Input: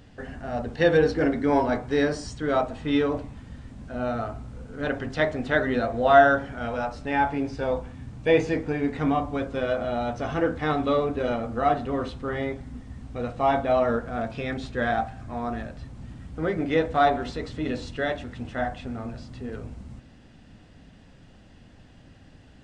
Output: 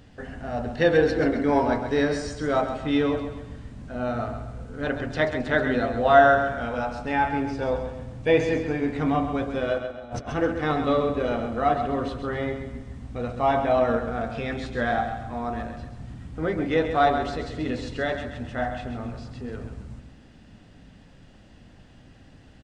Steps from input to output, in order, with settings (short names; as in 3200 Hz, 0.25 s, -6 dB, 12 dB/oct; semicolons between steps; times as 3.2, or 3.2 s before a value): 9.78–10.28 negative-ratio compressor -36 dBFS, ratio -0.5; feedback echo 0.133 s, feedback 42%, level -8.5 dB